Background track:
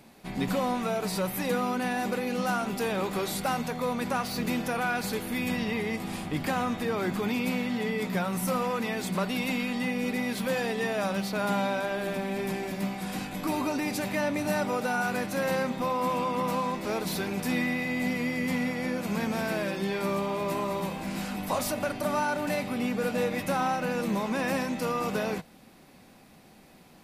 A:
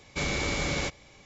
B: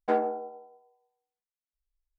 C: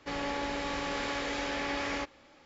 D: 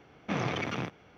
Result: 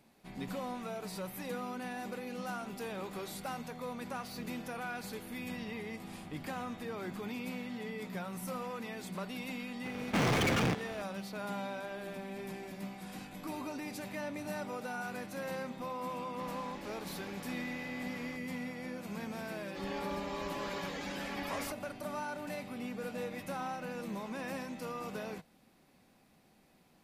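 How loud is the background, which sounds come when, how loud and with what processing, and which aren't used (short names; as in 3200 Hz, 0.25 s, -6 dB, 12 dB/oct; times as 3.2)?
background track -11.5 dB
9.85 add D -6 dB + sample leveller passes 5
16.32 add C -16 dB
19.68 add C -3.5 dB + per-bin expansion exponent 2
not used: A, B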